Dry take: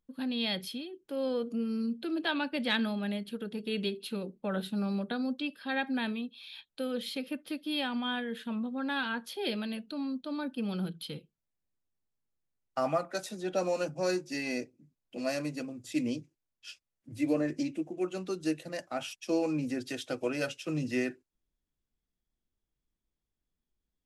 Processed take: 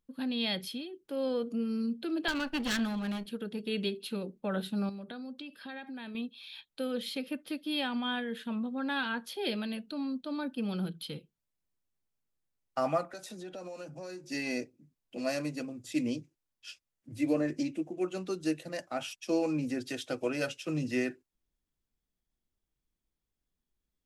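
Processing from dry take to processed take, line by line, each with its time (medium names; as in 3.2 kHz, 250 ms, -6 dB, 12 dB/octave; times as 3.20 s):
2.28–3.26 s: comb filter that takes the minimum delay 0.69 ms
4.89–6.15 s: compression, threshold -40 dBFS
13.05–14.24 s: compression 5:1, threshold -41 dBFS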